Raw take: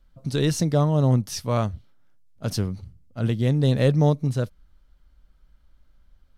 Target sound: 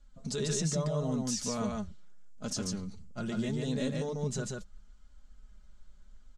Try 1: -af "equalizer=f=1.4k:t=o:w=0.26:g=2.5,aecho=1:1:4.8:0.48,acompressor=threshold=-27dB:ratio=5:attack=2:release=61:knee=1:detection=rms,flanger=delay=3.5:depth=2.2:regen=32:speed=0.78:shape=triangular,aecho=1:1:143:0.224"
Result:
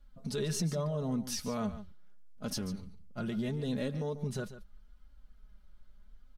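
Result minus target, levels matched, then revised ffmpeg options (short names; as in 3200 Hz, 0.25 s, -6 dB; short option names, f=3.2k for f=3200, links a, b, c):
echo-to-direct -10.5 dB; 8000 Hz band -4.0 dB
-af "lowpass=f=7.3k:t=q:w=4.9,equalizer=f=1.4k:t=o:w=0.26:g=2.5,aecho=1:1:4.8:0.48,acompressor=threshold=-27dB:ratio=5:attack=2:release=61:knee=1:detection=rms,flanger=delay=3.5:depth=2.2:regen=32:speed=0.78:shape=triangular,aecho=1:1:143:0.75"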